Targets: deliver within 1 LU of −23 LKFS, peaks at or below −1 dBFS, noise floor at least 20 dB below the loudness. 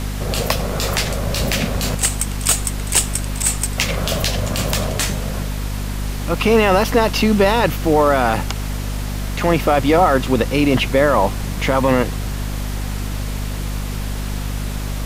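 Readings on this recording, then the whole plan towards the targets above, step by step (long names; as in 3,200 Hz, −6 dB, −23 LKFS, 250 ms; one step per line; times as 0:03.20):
mains hum 50 Hz; hum harmonics up to 250 Hz; level of the hum −21 dBFS; background noise floor −24 dBFS; target noise floor −39 dBFS; integrated loudness −18.5 LKFS; sample peak −1.5 dBFS; target loudness −23.0 LKFS
→ hum removal 50 Hz, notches 5
noise reduction from a noise print 15 dB
level −4.5 dB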